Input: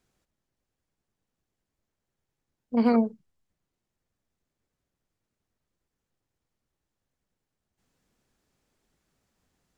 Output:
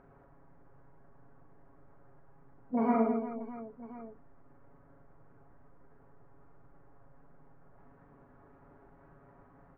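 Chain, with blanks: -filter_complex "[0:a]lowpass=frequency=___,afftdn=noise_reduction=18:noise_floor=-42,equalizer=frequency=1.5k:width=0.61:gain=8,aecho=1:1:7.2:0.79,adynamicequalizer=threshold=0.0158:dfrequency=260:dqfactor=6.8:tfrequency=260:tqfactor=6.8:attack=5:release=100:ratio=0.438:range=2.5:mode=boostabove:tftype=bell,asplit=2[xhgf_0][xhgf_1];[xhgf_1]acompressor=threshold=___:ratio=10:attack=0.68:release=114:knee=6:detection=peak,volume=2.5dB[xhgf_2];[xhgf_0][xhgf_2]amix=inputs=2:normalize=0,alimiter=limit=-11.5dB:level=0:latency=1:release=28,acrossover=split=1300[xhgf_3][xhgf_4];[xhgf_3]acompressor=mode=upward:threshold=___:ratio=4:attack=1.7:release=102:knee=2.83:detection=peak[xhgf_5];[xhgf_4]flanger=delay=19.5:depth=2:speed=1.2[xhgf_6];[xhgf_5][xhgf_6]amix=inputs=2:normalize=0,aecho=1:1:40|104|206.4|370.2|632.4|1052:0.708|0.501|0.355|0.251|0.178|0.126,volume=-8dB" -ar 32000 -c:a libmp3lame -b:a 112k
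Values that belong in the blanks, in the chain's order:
2.5k, -29dB, -37dB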